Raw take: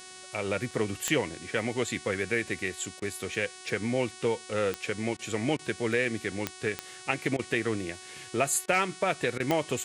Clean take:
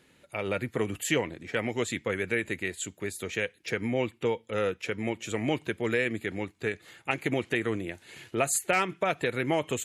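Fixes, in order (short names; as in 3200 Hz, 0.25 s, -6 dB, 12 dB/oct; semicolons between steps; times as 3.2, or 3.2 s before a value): de-click; de-hum 371.1 Hz, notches 27; interpolate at 0.71, 2.8 ms; interpolate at 3/5.17/5.57/7.37/8.66/9.38, 19 ms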